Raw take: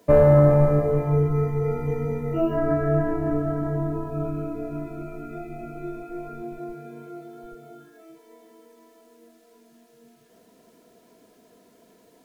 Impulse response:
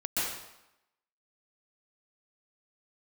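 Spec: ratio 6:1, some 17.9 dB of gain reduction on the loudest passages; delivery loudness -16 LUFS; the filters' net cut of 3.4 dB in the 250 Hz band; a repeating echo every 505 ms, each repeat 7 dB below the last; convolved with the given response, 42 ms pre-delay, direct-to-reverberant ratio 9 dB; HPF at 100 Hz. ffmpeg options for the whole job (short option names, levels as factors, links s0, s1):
-filter_complex "[0:a]highpass=100,equalizer=f=250:t=o:g=-5.5,acompressor=threshold=0.0224:ratio=6,aecho=1:1:505|1010|1515|2020|2525:0.447|0.201|0.0905|0.0407|0.0183,asplit=2[s0][s1];[1:a]atrim=start_sample=2205,adelay=42[s2];[s1][s2]afir=irnorm=-1:irlink=0,volume=0.141[s3];[s0][s3]amix=inputs=2:normalize=0,volume=10.6"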